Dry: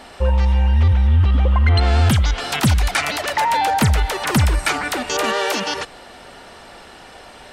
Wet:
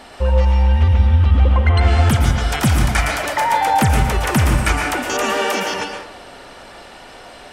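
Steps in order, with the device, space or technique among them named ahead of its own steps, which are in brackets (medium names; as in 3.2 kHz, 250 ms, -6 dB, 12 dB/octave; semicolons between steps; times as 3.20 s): 2.04–3.79 s: band-stop 2.7 kHz, Q 12; bathroom (reverberation RT60 0.75 s, pre-delay 108 ms, DRR 2 dB); dynamic bell 4.1 kHz, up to -7 dB, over -42 dBFS, Q 2.8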